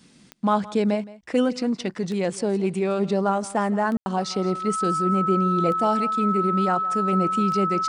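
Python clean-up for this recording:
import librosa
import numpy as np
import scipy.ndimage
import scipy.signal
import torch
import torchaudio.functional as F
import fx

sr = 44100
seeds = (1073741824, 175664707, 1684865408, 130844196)

y = fx.fix_declick_ar(x, sr, threshold=10.0)
y = fx.notch(y, sr, hz=1300.0, q=30.0)
y = fx.fix_ambience(y, sr, seeds[0], print_start_s=0.0, print_end_s=0.5, start_s=3.97, end_s=4.06)
y = fx.fix_echo_inverse(y, sr, delay_ms=168, level_db=-19.0)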